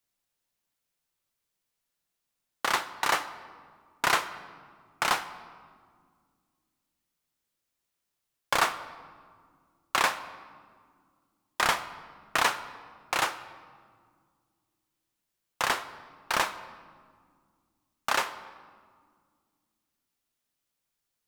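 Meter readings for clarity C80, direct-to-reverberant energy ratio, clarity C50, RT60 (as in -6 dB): 15.0 dB, 11.5 dB, 14.0 dB, 1.9 s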